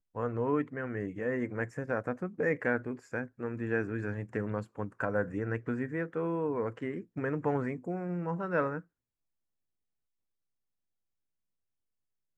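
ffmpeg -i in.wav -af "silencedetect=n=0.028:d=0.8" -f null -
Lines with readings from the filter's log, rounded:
silence_start: 8.78
silence_end: 12.38 | silence_duration: 3.60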